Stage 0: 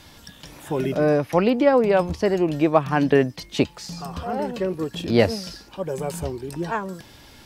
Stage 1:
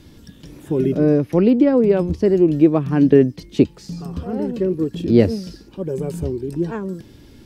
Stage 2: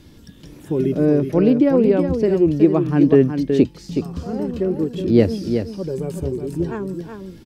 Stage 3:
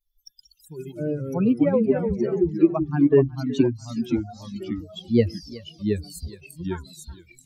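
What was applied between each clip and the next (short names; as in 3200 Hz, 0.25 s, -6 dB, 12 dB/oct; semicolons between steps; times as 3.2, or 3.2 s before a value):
resonant low shelf 520 Hz +11 dB, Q 1.5; gain -6 dB
echo 0.371 s -7 dB; gain -1 dB
per-bin expansion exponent 3; echoes that change speed 86 ms, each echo -2 st, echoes 3, each echo -6 dB; mismatched tape noise reduction encoder only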